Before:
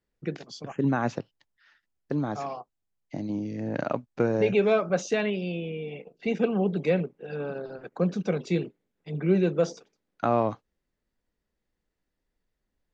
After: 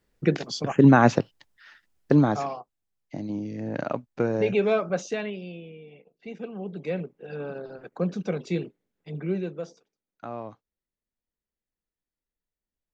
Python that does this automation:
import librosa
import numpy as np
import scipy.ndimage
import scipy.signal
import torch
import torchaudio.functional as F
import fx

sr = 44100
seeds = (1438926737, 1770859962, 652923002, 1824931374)

y = fx.gain(x, sr, db=fx.line((2.19, 10.0), (2.6, -0.5), (4.85, -0.5), (5.87, -11.5), (6.52, -11.5), (7.2, -1.5), (9.1, -1.5), (9.71, -12.5)))